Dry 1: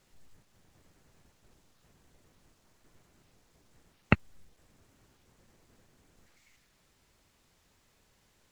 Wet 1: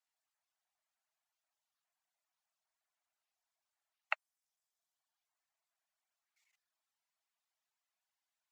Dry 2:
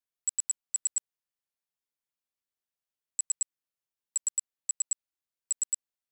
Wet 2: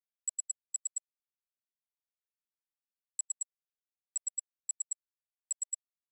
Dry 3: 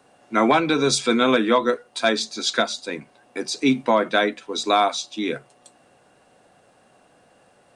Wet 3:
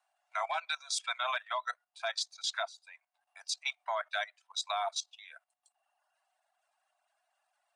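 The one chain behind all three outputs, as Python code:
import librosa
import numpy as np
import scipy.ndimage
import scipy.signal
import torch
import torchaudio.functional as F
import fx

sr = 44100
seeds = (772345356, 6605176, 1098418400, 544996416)

y = scipy.signal.sosfilt(scipy.signal.butter(16, 630.0, 'highpass', fs=sr, output='sos'), x)
y = fx.dereverb_blind(y, sr, rt60_s=1.2)
y = fx.level_steps(y, sr, step_db=14)
y = fx.upward_expand(y, sr, threshold_db=-39.0, expansion=1.5)
y = F.gain(torch.from_numpy(y), -4.0).numpy()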